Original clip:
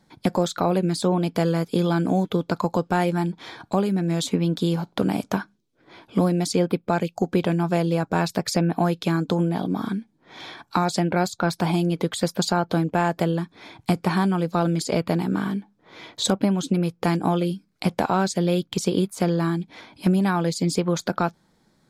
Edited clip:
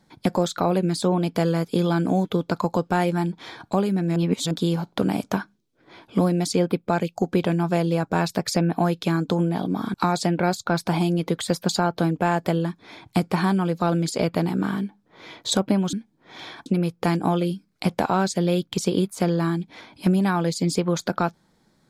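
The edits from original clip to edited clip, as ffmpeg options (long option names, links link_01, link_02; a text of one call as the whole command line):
ffmpeg -i in.wav -filter_complex "[0:a]asplit=6[link_01][link_02][link_03][link_04][link_05][link_06];[link_01]atrim=end=4.162[link_07];[link_02]atrim=start=4.158:end=4.512,asetpts=PTS-STARTPTS,areverse[link_08];[link_03]atrim=start=4.508:end=9.942[link_09];[link_04]atrim=start=10.668:end=16.662[link_10];[link_05]atrim=start=9.938:end=10.672[link_11];[link_06]atrim=start=16.658[link_12];[link_07][link_08]acrossfade=duration=0.004:curve1=hsin:curve2=hsin[link_13];[link_13][link_09]acrossfade=duration=0.004:curve1=hsin:curve2=hsin[link_14];[link_14][link_10]acrossfade=duration=0.004:curve1=hsin:curve2=hsin[link_15];[link_15][link_11]acrossfade=duration=0.004:curve1=hsin:curve2=hsin[link_16];[link_16][link_12]acrossfade=duration=0.004:curve1=hsin:curve2=hsin" out.wav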